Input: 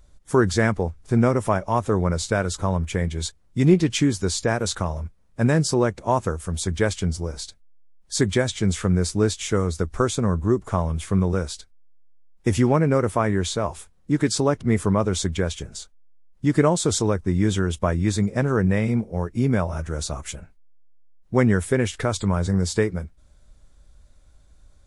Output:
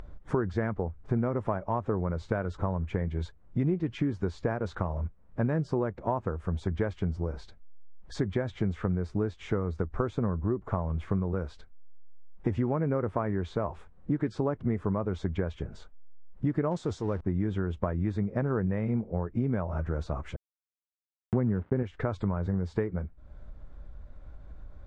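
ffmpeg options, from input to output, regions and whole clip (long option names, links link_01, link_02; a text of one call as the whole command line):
ffmpeg -i in.wav -filter_complex "[0:a]asettb=1/sr,asplit=3[link_01][link_02][link_03];[link_01]atrim=end=16.714[link_04];[link_02]atrim=start=16.71:end=17.21,asetpts=PTS-STARTPTS,afade=type=in:duration=0.004:curve=qsin,afade=type=out:start_time=0.496:duration=0.004:curve=qsin,aeval=exprs='val(0)+0.5*0.0299*sgn(val(0))':channel_layout=same,lowpass=7000,bass=frequency=250:gain=0,treble=frequency=4000:gain=15[link_05];[link_03]atrim=start=17.206[link_06];[link_04][link_05]acrossfade=duration=0.004:curve1=hsin:curve2=qsin[link_07];[link_07][link_06]acrossfade=duration=0.004:curve1=qsin:curve2=hsin,asettb=1/sr,asplit=3[link_08][link_09][link_10];[link_08]atrim=end=20.364[link_11];[link_09]atrim=start=20.36:end=21.83,asetpts=PTS-STARTPTS,afade=type=in:duration=0.004:curve=qsin,afade=type=out:start_time=1.466:duration=0.004:curve=qsin,aeval=exprs='val(0)*gte(abs(val(0)),0.0355)':channel_layout=same,highpass=130,lowpass=3200,aemphasis=mode=reproduction:type=riaa[link_12];[link_10]atrim=start=21.826[link_13];[link_11][link_12]acrossfade=duration=0.004:curve1=hsin:curve2=qsin[link_14];[link_14][link_13]acrossfade=duration=0.004:curve1=qsin:curve2=hsin,acompressor=threshold=-25dB:ratio=6,lowpass=1500,acompressor=mode=upward:threshold=-34dB:ratio=2.5" out.wav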